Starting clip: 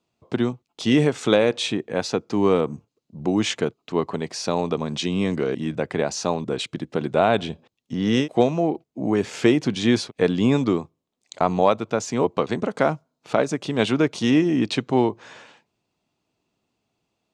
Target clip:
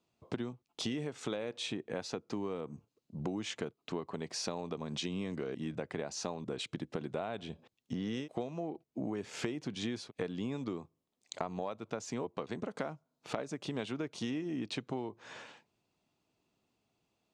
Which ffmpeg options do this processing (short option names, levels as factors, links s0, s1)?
-af "acompressor=threshold=0.0316:ratio=10,volume=0.631"